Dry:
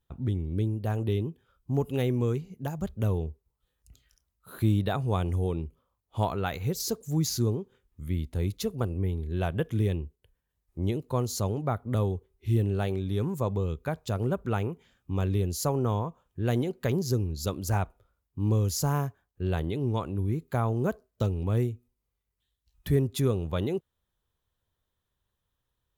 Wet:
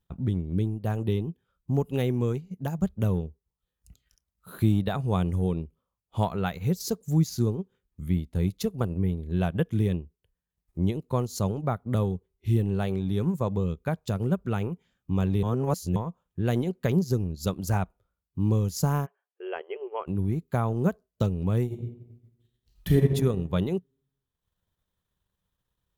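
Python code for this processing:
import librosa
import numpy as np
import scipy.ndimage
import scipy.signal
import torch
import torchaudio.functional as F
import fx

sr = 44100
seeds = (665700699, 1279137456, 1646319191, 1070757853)

y = fx.peak_eq(x, sr, hz=820.0, db=-3.5, octaves=2.0, at=(14.11, 14.61))
y = fx.brickwall_bandpass(y, sr, low_hz=360.0, high_hz=3300.0, at=(19.05, 20.06), fade=0.02)
y = fx.reverb_throw(y, sr, start_s=21.65, length_s=1.47, rt60_s=1.1, drr_db=-2.0)
y = fx.edit(y, sr, fx.reverse_span(start_s=15.43, length_s=0.53), tone=tone)
y = fx.peak_eq(y, sr, hz=180.0, db=9.0, octaves=0.32)
y = fx.transient(y, sr, attack_db=2, sustain_db=-8)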